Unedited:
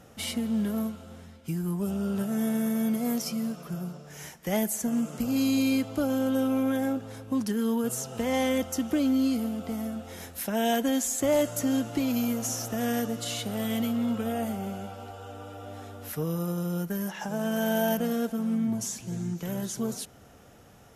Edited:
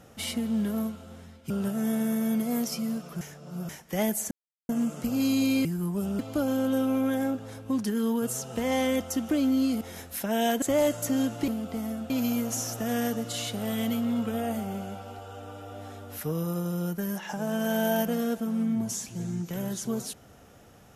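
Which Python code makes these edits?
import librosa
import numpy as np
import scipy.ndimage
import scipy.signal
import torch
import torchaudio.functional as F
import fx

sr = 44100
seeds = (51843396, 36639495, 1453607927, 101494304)

y = fx.edit(x, sr, fx.move(start_s=1.5, length_s=0.54, to_s=5.81),
    fx.reverse_span(start_s=3.75, length_s=0.48),
    fx.insert_silence(at_s=4.85, length_s=0.38),
    fx.move(start_s=9.43, length_s=0.62, to_s=12.02),
    fx.cut(start_s=10.86, length_s=0.3), tone=tone)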